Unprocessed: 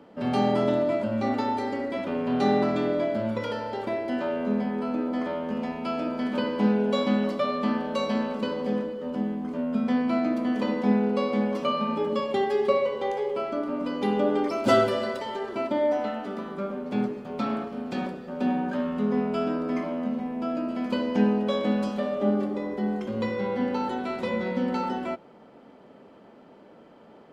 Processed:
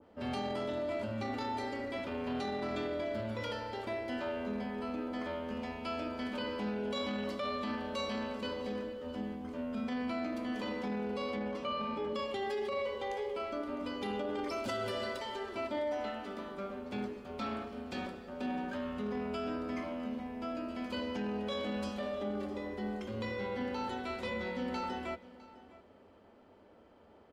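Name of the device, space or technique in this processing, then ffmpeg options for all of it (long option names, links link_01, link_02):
car stereo with a boomy subwoofer: -filter_complex "[0:a]asettb=1/sr,asplit=3[link_01][link_02][link_03];[link_01]atrim=end=11.354[link_04];[link_02]atrim=start=11.35:end=12.15,asetpts=PTS-STARTPTS,afade=type=in:duration=0.004:curve=qsin,afade=type=out:start_time=0.796:duration=0.004:curve=qsin,aemphasis=mode=reproduction:type=50kf[link_05];[link_03]atrim=start=12.146[link_06];[link_04][link_05]acrossfade=duration=0.004:curve1=hsin:curve2=qsin[link_07];[link_07][link_06]acrossfade=duration=0.004:curve1=qsin:curve2=hsin,lowshelf=frequency=110:width_type=q:width=3:gain=8,alimiter=limit=-21dB:level=0:latency=1:release=11,aecho=1:1:657:0.119,adynamicequalizer=threshold=0.00562:dfrequency=1600:dqfactor=0.7:tfrequency=1600:tqfactor=0.7:attack=5:release=100:ratio=0.375:range=3:mode=boostabove:tftype=highshelf,volume=-8.5dB"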